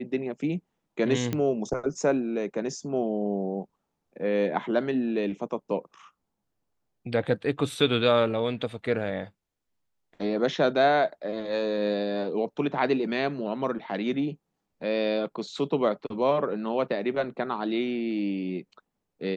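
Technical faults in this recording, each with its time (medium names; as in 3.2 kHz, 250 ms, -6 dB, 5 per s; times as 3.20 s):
1.33 s: pop -15 dBFS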